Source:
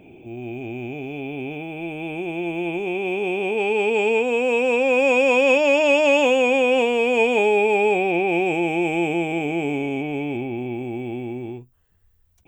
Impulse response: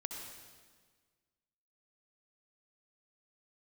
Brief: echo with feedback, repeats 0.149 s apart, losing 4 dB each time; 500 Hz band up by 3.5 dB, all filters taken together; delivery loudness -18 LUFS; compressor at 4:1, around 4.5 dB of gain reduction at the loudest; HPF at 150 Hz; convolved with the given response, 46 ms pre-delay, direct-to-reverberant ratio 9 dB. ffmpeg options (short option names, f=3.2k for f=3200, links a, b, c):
-filter_complex "[0:a]highpass=150,equalizer=f=500:t=o:g=4,acompressor=threshold=-16dB:ratio=4,aecho=1:1:149|298|447|596|745|894|1043|1192|1341:0.631|0.398|0.25|0.158|0.0994|0.0626|0.0394|0.0249|0.0157,asplit=2[a][b];[1:a]atrim=start_sample=2205,adelay=46[c];[b][c]afir=irnorm=-1:irlink=0,volume=-8.5dB[d];[a][d]amix=inputs=2:normalize=0,volume=0.5dB"